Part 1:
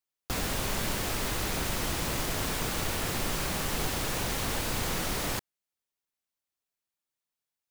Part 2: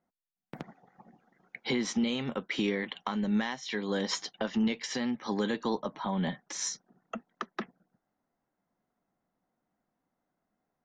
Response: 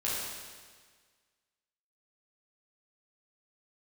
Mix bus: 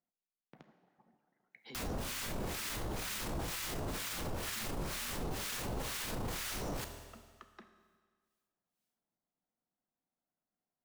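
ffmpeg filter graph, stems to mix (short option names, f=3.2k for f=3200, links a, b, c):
-filter_complex "[0:a]acrossover=split=1100[a][b];[a]aeval=exprs='val(0)*(1-1/2+1/2*cos(2*PI*2.1*n/s))':c=same[c];[b]aeval=exprs='val(0)*(1-1/2-1/2*cos(2*PI*2.1*n/s))':c=same[d];[c][d]amix=inputs=2:normalize=0,adelay=1450,volume=0dB,asplit=2[e][f];[f]volume=-15dB[g];[1:a]acompressor=threshold=-41dB:ratio=2,volume=-15.5dB,asplit=2[h][i];[i]volume=-12.5dB[j];[2:a]atrim=start_sample=2205[k];[g][j]amix=inputs=2:normalize=0[l];[l][k]afir=irnorm=-1:irlink=0[m];[e][h][m]amix=inputs=3:normalize=0,alimiter=level_in=6.5dB:limit=-24dB:level=0:latency=1:release=17,volume=-6.5dB"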